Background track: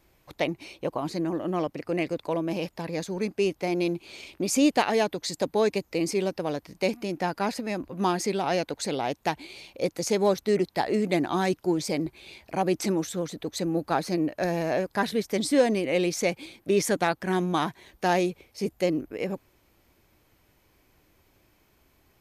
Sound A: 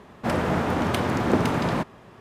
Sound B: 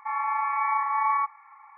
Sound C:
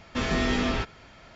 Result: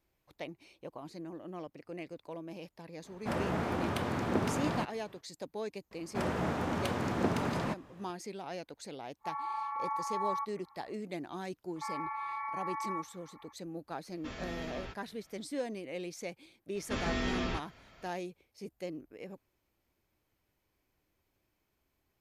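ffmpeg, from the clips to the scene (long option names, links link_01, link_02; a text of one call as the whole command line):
ffmpeg -i bed.wav -i cue0.wav -i cue1.wav -i cue2.wav -filter_complex "[1:a]asplit=2[link_01][link_02];[2:a]asplit=2[link_03][link_04];[3:a]asplit=2[link_05][link_06];[0:a]volume=-15.5dB[link_07];[link_02]equalizer=frequency=6600:width_type=o:width=0.77:gain=2.5[link_08];[link_03]lowpass=1100[link_09];[link_04]acompressor=threshold=-27dB:ratio=6:attack=3.2:release=140:knee=1:detection=peak[link_10];[link_01]atrim=end=2.2,asetpts=PTS-STARTPTS,volume=-9.5dB,afade=type=in:duration=0.05,afade=type=out:start_time=2.15:duration=0.05,adelay=3020[link_11];[link_08]atrim=end=2.2,asetpts=PTS-STARTPTS,volume=-9.5dB,afade=type=in:duration=0.004:curve=hsin,afade=type=out:start_time=2.196:duration=0.004:curve=hsin,adelay=5910[link_12];[link_09]atrim=end=1.77,asetpts=PTS-STARTPTS,volume=-7.5dB,afade=type=in:duration=0.1,afade=type=out:start_time=1.67:duration=0.1,adelay=9190[link_13];[link_10]atrim=end=1.77,asetpts=PTS-STARTPTS,volume=-7.5dB,afade=type=in:duration=0.004:curve=hsin,afade=type=out:start_time=1.766:duration=0.004:curve=hsin,adelay=11760[link_14];[link_05]atrim=end=1.35,asetpts=PTS-STARTPTS,volume=-16.5dB,afade=type=in:duration=0.004:curve=hsin,afade=type=out:start_time=1.346:duration=0.004:curve=hsin,adelay=14090[link_15];[link_06]atrim=end=1.35,asetpts=PTS-STARTPTS,volume=-8dB,afade=type=in:duration=0.004:curve=hsin,afade=type=out:start_time=1.346:duration=0.004:curve=hsin,adelay=16750[link_16];[link_07][link_11][link_12][link_13][link_14][link_15][link_16]amix=inputs=7:normalize=0" out.wav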